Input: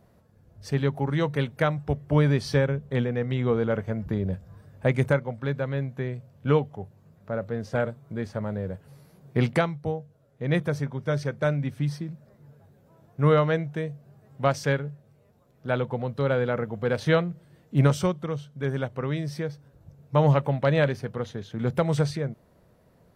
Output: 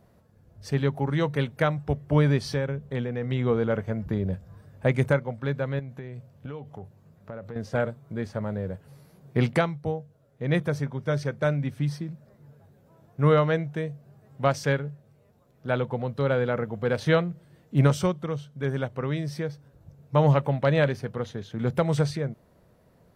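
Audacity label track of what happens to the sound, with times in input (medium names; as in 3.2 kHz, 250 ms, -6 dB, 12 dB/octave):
2.380000	3.230000	compression 1.5:1, threshold -31 dBFS
5.790000	7.560000	compression 12:1, threshold -33 dBFS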